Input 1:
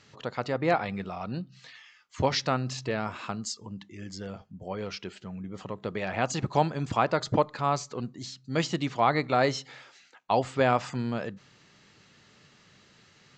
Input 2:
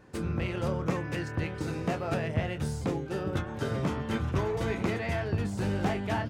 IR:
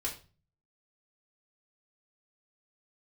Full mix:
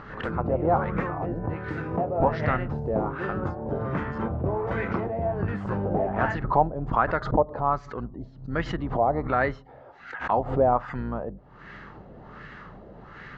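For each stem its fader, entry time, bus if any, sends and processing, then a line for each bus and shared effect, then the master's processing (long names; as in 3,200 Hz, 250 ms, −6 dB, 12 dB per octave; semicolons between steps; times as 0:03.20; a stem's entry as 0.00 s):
−2.5 dB, 0.00 s, no send, sub-octave generator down 2 octaves, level −3 dB; parametric band 2,400 Hz −5.5 dB 0.22 octaves
0.0 dB, 0.10 s, no send, high-shelf EQ 5,900 Hz +7.5 dB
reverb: not used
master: upward compression, threshold −29 dBFS; auto-filter low-pass sine 1.3 Hz 630–1,800 Hz; background raised ahead of every attack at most 110 dB per second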